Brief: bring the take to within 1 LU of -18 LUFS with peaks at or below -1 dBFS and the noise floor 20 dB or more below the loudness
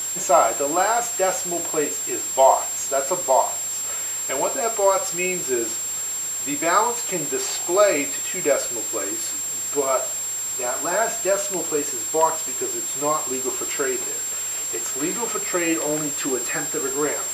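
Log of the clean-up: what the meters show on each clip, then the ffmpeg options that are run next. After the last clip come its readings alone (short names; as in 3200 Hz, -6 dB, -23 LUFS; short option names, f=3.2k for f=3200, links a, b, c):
steady tone 7500 Hz; tone level -25 dBFS; noise floor -28 dBFS; noise floor target -42 dBFS; loudness -21.5 LUFS; peak -4.0 dBFS; loudness target -18.0 LUFS
-> -af "bandreject=f=7.5k:w=30"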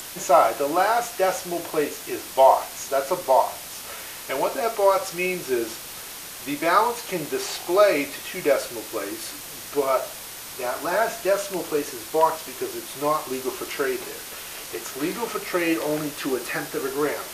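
steady tone none; noise floor -38 dBFS; noise floor target -45 dBFS
-> -af "afftdn=nr=7:nf=-38"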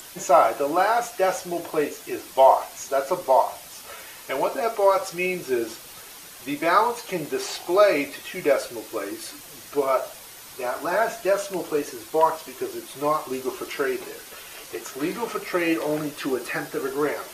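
noise floor -43 dBFS; noise floor target -44 dBFS
-> -af "afftdn=nr=6:nf=-43"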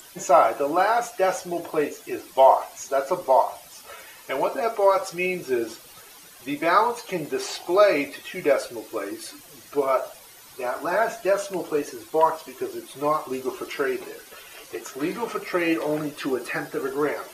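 noise floor -47 dBFS; loudness -24.5 LUFS; peak -4.5 dBFS; loudness target -18.0 LUFS
-> -af "volume=6.5dB,alimiter=limit=-1dB:level=0:latency=1"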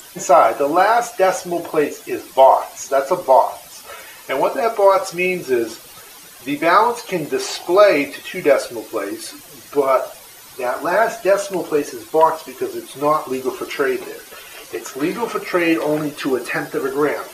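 loudness -18.0 LUFS; peak -1.0 dBFS; noise floor -41 dBFS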